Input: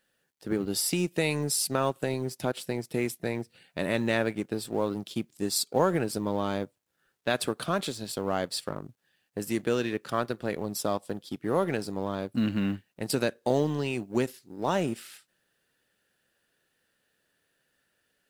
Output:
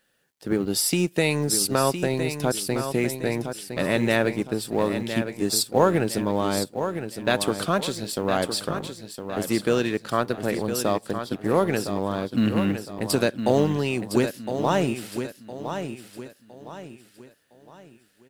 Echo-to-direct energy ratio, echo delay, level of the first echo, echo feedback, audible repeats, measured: -8.0 dB, 1.011 s, -8.5 dB, 36%, 3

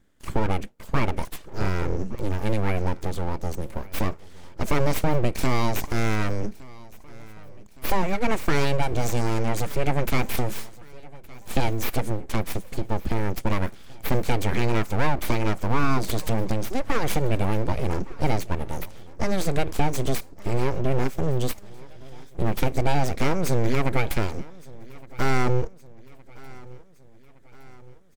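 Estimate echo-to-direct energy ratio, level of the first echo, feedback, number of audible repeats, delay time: -20.5 dB, -22.0 dB, 54%, 3, 1.165 s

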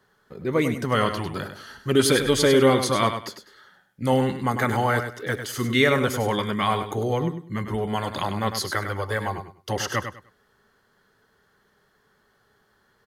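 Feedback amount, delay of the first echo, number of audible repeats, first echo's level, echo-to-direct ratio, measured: 23%, 0.1 s, 3, -8.5 dB, -8.5 dB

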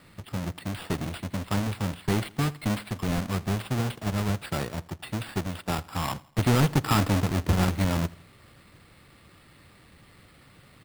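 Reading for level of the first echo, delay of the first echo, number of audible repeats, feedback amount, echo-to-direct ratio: -22.5 dB, 82 ms, 2, 46%, -21.5 dB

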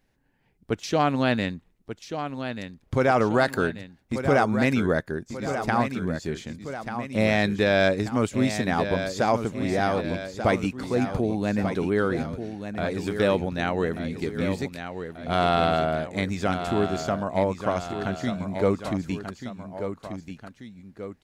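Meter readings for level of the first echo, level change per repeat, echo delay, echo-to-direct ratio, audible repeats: -9.0 dB, -5.0 dB, 1.187 s, -8.0 dB, 2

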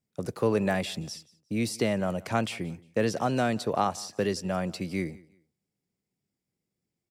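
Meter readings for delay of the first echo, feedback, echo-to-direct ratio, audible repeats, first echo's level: 0.177 s, 27%, -22.5 dB, 2, -23.0 dB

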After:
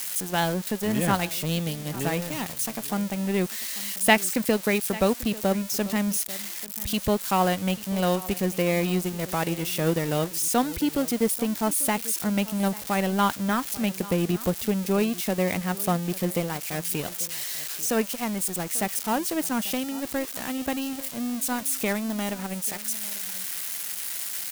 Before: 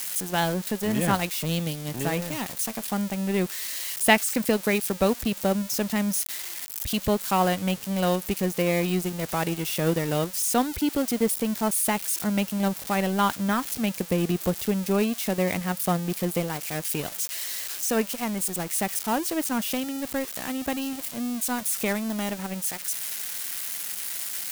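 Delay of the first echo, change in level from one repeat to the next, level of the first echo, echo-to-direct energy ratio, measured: 0.842 s, no steady repeat, -18.5 dB, -18.5 dB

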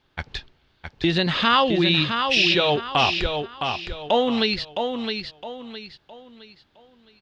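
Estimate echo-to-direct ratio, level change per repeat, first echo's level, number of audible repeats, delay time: -5.5 dB, -9.5 dB, -6.0 dB, 4, 0.663 s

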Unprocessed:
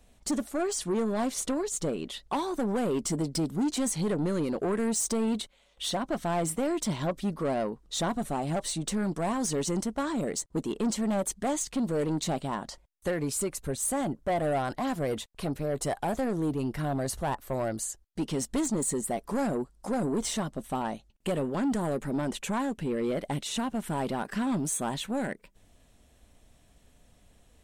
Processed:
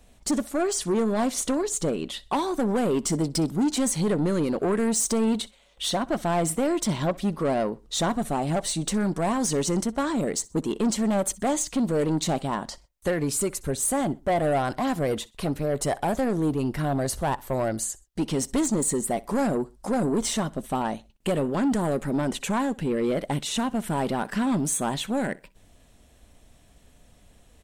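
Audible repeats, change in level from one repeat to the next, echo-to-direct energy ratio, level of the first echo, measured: 2, -9.5 dB, -22.0 dB, -22.5 dB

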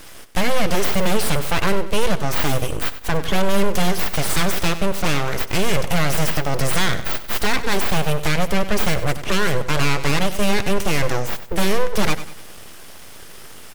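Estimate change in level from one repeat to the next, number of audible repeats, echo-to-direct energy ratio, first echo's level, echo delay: -8.5 dB, 3, -12.5 dB, -13.0 dB, 96 ms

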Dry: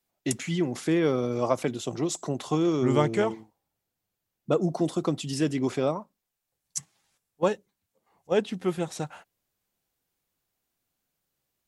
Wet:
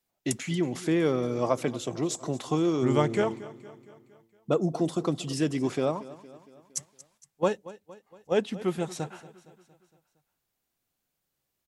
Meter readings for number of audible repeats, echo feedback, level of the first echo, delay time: 4, 55%, -18.0 dB, 0.231 s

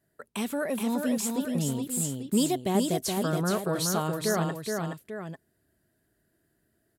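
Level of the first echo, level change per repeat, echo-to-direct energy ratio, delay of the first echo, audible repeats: -4.0 dB, -6.0 dB, -3.0 dB, 0.422 s, 2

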